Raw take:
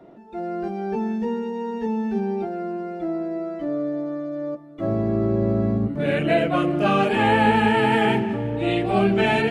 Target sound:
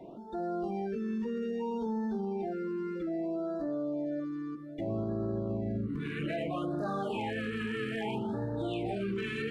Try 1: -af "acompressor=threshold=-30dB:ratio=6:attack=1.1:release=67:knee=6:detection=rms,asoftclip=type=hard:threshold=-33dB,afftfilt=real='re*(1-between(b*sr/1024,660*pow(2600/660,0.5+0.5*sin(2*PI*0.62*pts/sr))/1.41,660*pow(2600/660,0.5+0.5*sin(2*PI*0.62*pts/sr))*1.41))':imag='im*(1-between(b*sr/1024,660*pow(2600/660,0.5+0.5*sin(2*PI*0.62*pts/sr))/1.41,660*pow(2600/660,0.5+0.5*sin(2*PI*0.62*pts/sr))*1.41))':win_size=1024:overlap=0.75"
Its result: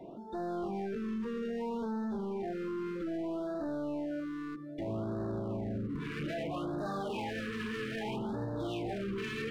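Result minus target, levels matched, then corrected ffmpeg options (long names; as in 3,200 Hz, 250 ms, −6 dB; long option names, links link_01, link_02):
hard clipping: distortion +28 dB
-af "acompressor=threshold=-30dB:ratio=6:attack=1.1:release=67:knee=6:detection=rms,asoftclip=type=hard:threshold=-25.5dB,afftfilt=real='re*(1-between(b*sr/1024,660*pow(2600/660,0.5+0.5*sin(2*PI*0.62*pts/sr))/1.41,660*pow(2600/660,0.5+0.5*sin(2*PI*0.62*pts/sr))*1.41))':imag='im*(1-between(b*sr/1024,660*pow(2600/660,0.5+0.5*sin(2*PI*0.62*pts/sr))/1.41,660*pow(2600/660,0.5+0.5*sin(2*PI*0.62*pts/sr))*1.41))':win_size=1024:overlap=0.75"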